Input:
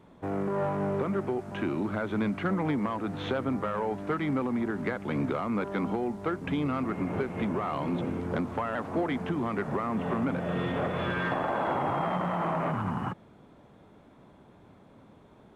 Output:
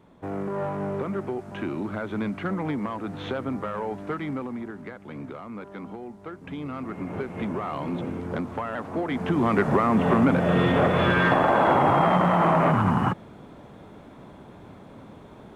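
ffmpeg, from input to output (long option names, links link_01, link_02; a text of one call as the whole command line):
ffmpeg -i in.wav -af "volume=17.5dB,afade=type=out:start_time=4.03:duration=0.83:silence=0.398107,afade=type=in:start_time=6.33:duration=1.15:silence=0.375837,afade=type=in:start_time=9.06:duration=0.47:silence=0.354813" out.wav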